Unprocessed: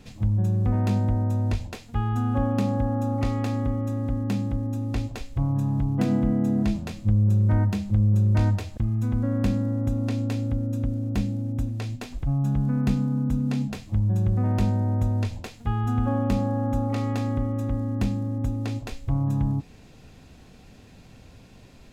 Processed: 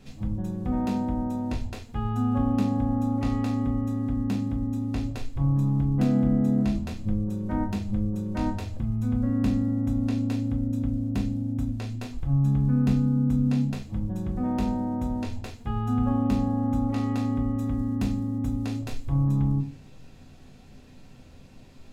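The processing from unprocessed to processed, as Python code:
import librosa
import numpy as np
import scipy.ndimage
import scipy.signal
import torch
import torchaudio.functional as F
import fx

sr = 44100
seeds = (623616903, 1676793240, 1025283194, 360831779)

y = fx.high_shelf(x, sr, hz=5500.0, db=4.5, at=(17.59, 19.26))
y = fx.room_shoebox(y, sr, seeds[0], volume_m3=130.0, walls='furnished', distance_m=1.1)
y = y * 10.0 ** (-4.5 / 20.0)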